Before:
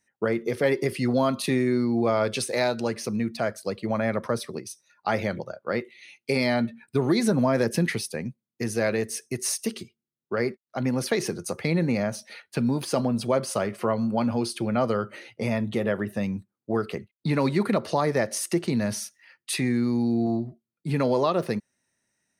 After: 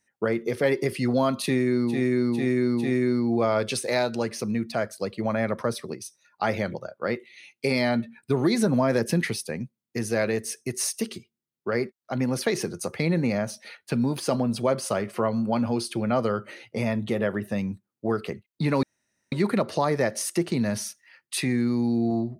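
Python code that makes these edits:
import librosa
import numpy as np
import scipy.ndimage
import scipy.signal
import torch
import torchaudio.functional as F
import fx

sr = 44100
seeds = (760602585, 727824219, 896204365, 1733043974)

y = fx.edit(x, sr, fx.repeat(start_s=1.5, length_s=0.45, count=4, crossfade_s=0.16),
    fx.insert_room_tone(at_s=17.48, length_s=0.49), tone=tone)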